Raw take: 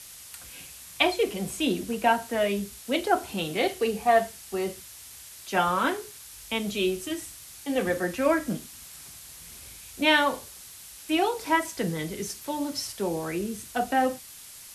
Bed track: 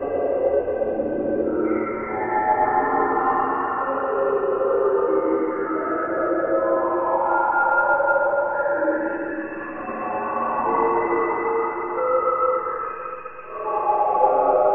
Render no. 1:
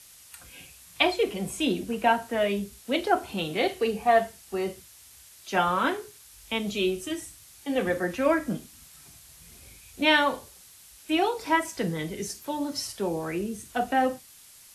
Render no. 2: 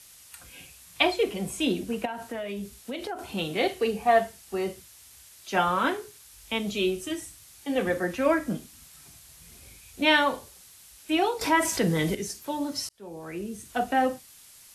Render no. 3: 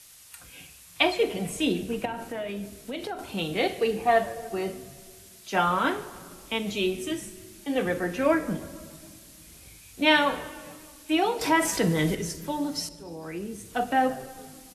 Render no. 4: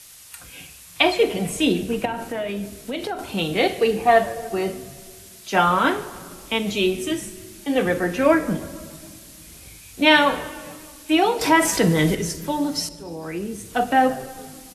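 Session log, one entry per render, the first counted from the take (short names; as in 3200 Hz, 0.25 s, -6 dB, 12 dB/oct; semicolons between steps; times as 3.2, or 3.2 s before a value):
noise print and reduce 6 dB
2.05–3.19 compressor 8:1, threshold -30 dBFS; 11.41–12.15 fast leveller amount 50%; 12.89–13.73 fade in
frequency-shifting echo 0.147 s, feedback 61%, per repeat -120 Hz, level -22 dB; shoebox room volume 3000 m³, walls mixed, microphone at 0.5 m
gain +6 dB; limiter -3 dBFS, peak gain reduction 2.5 dB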